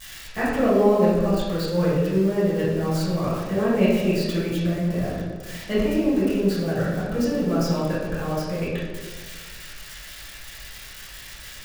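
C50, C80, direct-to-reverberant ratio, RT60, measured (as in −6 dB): −0.5 dB, 2.5 dB, −11.0 dB, 1.5 s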